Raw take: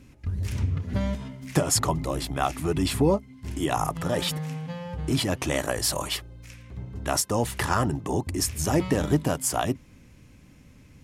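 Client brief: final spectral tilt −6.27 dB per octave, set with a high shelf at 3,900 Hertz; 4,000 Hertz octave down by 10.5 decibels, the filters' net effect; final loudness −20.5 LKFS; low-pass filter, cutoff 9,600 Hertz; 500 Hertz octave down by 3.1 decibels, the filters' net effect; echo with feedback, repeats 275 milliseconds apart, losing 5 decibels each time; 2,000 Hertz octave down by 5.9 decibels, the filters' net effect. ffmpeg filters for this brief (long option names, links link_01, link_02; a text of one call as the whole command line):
ffmpeg -i in.wav -af "lowpass=9600,equalizer=frequency=500:width_type=o:gain=-3.5,equalizer=frequency=2000:width_type=o:gain=-4,highshelf=frequency=3900:gain=-8.5,equalizer=frequency=4000:width_type=o:gain=-7,aecho=1:1:275|550|825|1100|1375|1650|1925:0.562|0.315|0.176|0.0988|0.0553|0.031|0.0173,volume=7.5dB" out.wav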